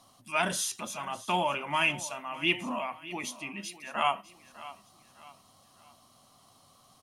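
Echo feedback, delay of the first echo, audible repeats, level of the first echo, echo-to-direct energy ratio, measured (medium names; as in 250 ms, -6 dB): 39%, 603 ms, 3, -17.0 dB, -16.5 dB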